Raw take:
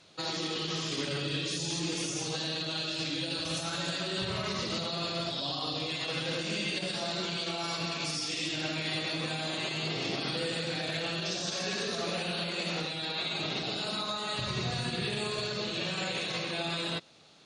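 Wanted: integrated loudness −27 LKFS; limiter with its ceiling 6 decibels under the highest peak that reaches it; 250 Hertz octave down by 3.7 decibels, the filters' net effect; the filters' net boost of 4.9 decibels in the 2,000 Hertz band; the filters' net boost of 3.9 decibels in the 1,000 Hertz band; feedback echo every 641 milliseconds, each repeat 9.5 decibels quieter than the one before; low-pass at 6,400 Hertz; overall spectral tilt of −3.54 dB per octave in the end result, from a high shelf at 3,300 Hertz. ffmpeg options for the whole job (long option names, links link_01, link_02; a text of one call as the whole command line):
ffmpeg -i in.wav -af "lowpass=6400,equalizer=frequency=250:width_type=o:gain=-6.5,equalizer=frequency=1000:width_type=o:gain=4,equalizer=frequency=2000:width_type=o:gain=8,highshelf=frequency=3300:gain=-6,alimiter=level_in=0.5dB:limit=-24dB:level=0:latency=1,volume=-0.5dB,aecho=1:1:641|1282|1923|2564:0.335|0.111|0.0365|0.012,volume=5.5dB" out.wav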